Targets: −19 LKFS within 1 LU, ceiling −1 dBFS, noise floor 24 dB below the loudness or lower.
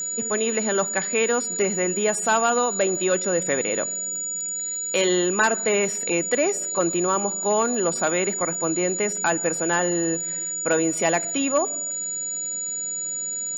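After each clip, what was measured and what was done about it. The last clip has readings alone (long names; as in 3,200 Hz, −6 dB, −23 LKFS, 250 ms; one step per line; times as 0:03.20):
crackle rate 49 per second; interfering tone 6,900 Hz; level of the tone −26 dBFS; integrated loudness −22.5 LKFS; sample peak −7.0 dBFS; target loudness −19.0 LKFS
→ click removal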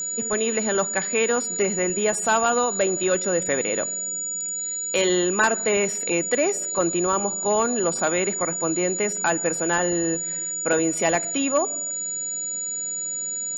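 crackle rate 0.15 per second; interfering tone 6,900 Hz; level of the tone −26 dBFS
→ notch filter 6,900 Hz, Q 30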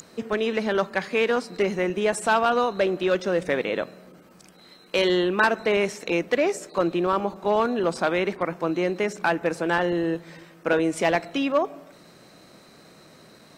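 interfering tone none found; integrated loudness −24.5 LKFS; sample peak −7.5 dBFS; target loudness −19.0 LKFS
→ level +5.5 dB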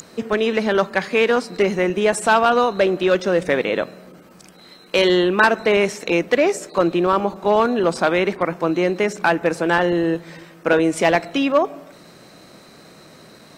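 integrated loudness −19.0 LKFS; sample peak −2.0 dBFS; background noise floor −46 dBFS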